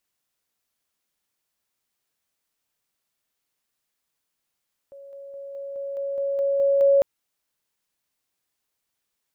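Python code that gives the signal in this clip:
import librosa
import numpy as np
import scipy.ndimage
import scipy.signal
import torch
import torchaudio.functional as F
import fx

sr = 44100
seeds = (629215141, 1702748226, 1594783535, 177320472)

y = fx.level_ladder(sr, hz=556.0, from_db=-40.5, step_db=3.0, steps=10, dwell_s=0.21, gap_s=0.0)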